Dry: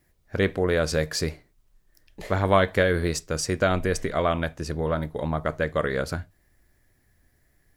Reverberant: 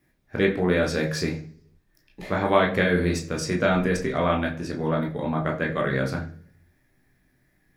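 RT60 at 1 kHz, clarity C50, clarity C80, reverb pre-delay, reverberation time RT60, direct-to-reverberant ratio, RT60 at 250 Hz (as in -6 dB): 0.45 s, 10.5 dB, 15.5 dB, 15 ms, 0.55 s, -1.0 dB, 0.75 s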